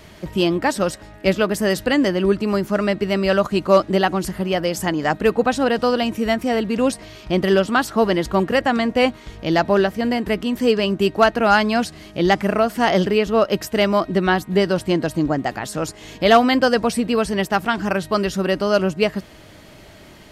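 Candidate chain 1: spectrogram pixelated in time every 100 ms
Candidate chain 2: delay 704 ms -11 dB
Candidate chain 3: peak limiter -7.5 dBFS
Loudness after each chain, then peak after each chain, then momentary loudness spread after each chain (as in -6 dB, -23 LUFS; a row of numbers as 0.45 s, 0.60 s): -21.5 LUFS, -19.0 LUFS, -20.5 LUFS; -3.0 dBFS, -3.0 dBFS, -7.5 dBFS; 6 LU, 6 LU, 5 LU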